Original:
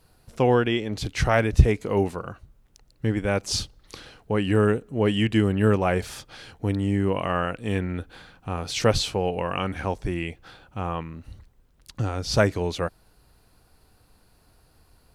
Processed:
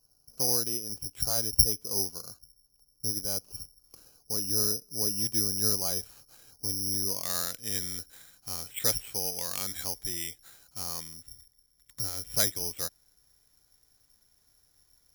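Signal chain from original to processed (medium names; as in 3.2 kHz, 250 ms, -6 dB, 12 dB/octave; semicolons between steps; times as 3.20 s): peaking EQ 2 kHz -14 dB 0.64 oct, from 5.25 s -7 dB, from 7.23 s +8.5 dB; careless resampling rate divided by 8×, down filtered, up zero stuff; trim -16.5 dB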